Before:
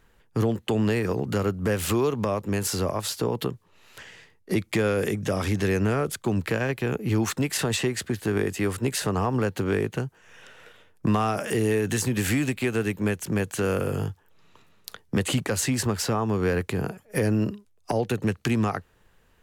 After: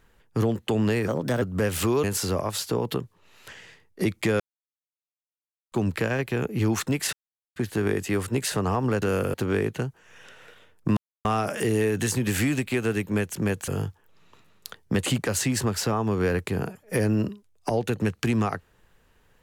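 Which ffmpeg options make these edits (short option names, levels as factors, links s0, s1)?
-filter_complex "[0:a]asplit=12[s0][s1][s2][s3][s4][s5][s6][s7][s8][s9][s10][s11];[s0]atrim=end=1.084[s12];[s1]atrim=start=1.08:end=1.49,asetpts=PTS-STARTPTS,asetrate=53361,aresample=44100[s13];[s2]atrim=start=1.486:end=2.112[s14];[s3]atrim=start=2.538:end=4.9,asetpts=PTS-STARTPTS,afade=t=out:st=2.358:d=0.004:c=hsin[s15];[s4]atrim=start=4.9:end=6.22,asetpts=PTS-STARTPTS,volume=0[s16];[s5]atrim=start=6.22:end=7.63,asetpts=PTS-STARTPTS,afade=t=in:d=0.004:c=hsin,afade=t=out:st=1.406:d=0.004:c=hsin[s17];[s6]atrim=start=7.63:end=8.06,asetpts=PTS-STARTPTS,volume=0[s18];[s7]atrim=start=8.06:end=9.522,asetpts=PTS-STARTPTS,afade=t=in:d=0.004:c=hsin[s19];[s8]atrim=start=13.578:end=13.902[s20];[s9]atrim=start=9.518:end=11.15,asetpts=PTS-STARTPTS,afade=t=out:st=1.628:d=0.004:c=hsin,apad=pad_dur=0.28[s21];[s10]atrim=start=11.15:end=13.582,asetpts=PTS-STARTPTS,afade=t=in:d=0.004:c=hsin[s22];[s11]atrim=start=13.898[s23];[s12][s13]acrossfade=d=0.004:c1=hsin:c2=hsin[s24];[s24][s14]acrossfade=d=0.004:c1=hsin:c2=hsin[s25];[s15][s16][s17][s18][s19]concat=n=5:v=0:a=1[s26];[s25][s26]acrossfade=d=0.004:c1=hsin:c2=hsin[s27];[s27][s20]acrossfade=d=0.004:c1=hsin:c2=hsin[s28];[s21][s22]concat=n=2:v=0:a=1[s29];[s28][s29]acrossfade=d=0.004:c1=hsin:c2=hsin[s30];[s30][s23]acrossfade=d=0.004:c1=hsin:c2=hsin"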